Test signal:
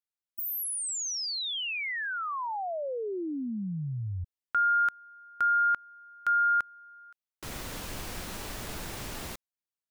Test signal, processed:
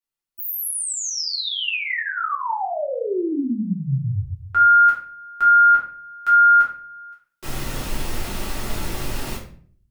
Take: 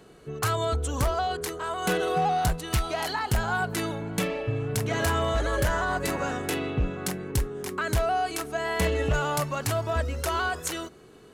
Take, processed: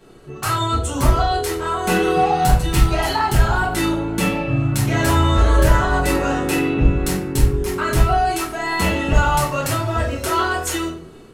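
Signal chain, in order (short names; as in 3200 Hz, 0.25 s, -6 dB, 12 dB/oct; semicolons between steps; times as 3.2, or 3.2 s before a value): AGC gain up to 3 dB; shoebox room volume 50 m³, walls mixed, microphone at 1.6 m; gain -3 dB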